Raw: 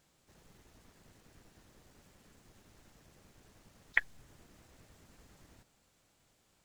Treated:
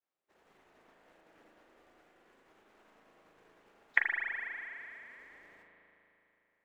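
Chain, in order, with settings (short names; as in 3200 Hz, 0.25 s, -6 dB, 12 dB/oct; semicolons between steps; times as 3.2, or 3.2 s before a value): expander -58 dBFS; three-band isolator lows -23 dB, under 310 Hz, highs -15 dB, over 2900 Hz; spring tank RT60 3.2 s, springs 37 ms, chirp 50 ms, DRR 0 dB; gain +3 dB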